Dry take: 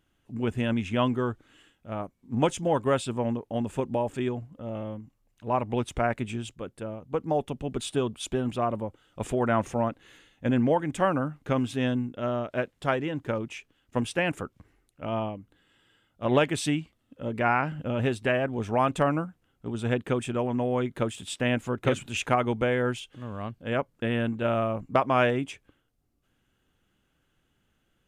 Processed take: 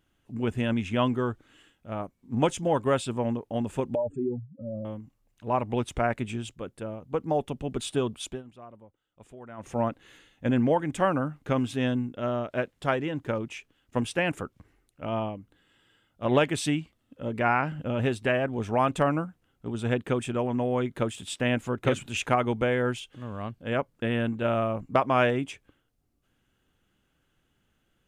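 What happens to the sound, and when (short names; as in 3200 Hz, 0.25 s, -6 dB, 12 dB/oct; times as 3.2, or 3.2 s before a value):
3.95–4.85 spectral contrast raised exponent 2.8
8.2–9.8 dip -19.5 dB, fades 0.23 s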